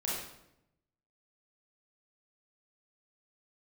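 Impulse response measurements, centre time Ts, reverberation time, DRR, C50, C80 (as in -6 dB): 69 ms, 0.85 s, -6.0 dB, -0.5 dB, 3.5 dB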